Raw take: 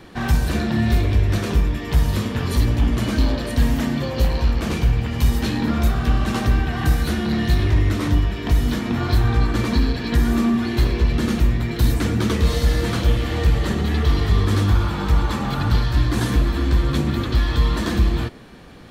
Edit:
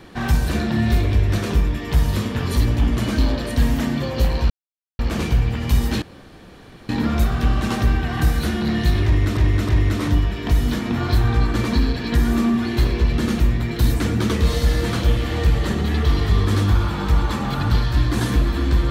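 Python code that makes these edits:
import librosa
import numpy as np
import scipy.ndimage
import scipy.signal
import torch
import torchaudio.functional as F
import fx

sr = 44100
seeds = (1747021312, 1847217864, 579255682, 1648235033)

y = fx.edit(x, sr, fx.insert_silence(at_s=4.5, length_s=0.49),
    fx.insert_room_tone(at_s=5.53, length_s=0.87),
    fx.repeat(start_s=7.69, length_s=0.32, count=3), tone=tone)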